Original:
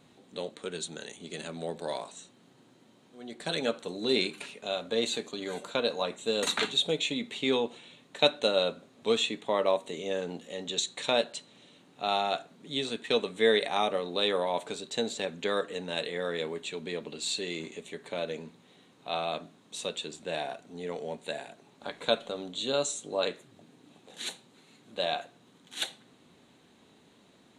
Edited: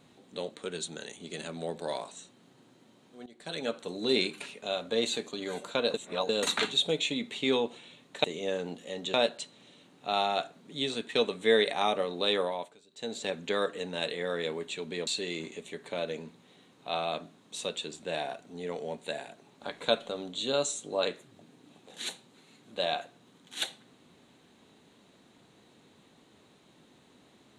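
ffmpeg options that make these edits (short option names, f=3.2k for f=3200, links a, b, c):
-filter_complex "[0:a]asplit=9[a][b][c][d][e][f][g][h][i];[a]atrim=end=3.26,asetpts=PTS-STARTPTS,afade=t=out:st=3.256:d=0.004:c=hsin:silence=0.199526[j];[b]atrim=start=3.26:end=5.942,asetpts=PTS-STARTPTS,afade=t=in:d=0.69:silence=0.199526[k];[c]atrim=start=5.938:end=6.292,asetpts=PTS-STARTPTS,areverse[l];[d]atrim=start=6.288:end=8.242[m];[e]atrim=start=9.868:end=10.772[n];[f]atrim=start=11.088:end=14.71,asetpts=PTS-STARTPTS,afade=t=out:st=3.242:d=0.38:silence=0.0794328[o];[g]atrim=start=14.71:end=14.85,asetpts=PTS-STARTPTS,volume=-22dB[p];[h]atrim=start=14.85:end=17.022,asetpts=PTS-STARTPTS,afade=t=in:d=0.38:silence=0.0794328[q];[i]atrim=start=17.268[r];[j][k]concat=n=2:v=0:a=1[s];[s][l]acrossfade=d=0.004:c1=hsin:c2=hsin[t];[t][m]acrossfade=d=0.004:c1=hsin:c2=hsin[u];[u][n]acrossfade=d=0.004:c1=hsin:c2=hsin[v];[o][p][q]concat=n=3:v=0:a=1[w];[v][w]acrossfade=d=0.004:c1=hsin:c2=hsin[x];[x][r]acrossfade=d=0.004:c1=hsin:c2=hsin"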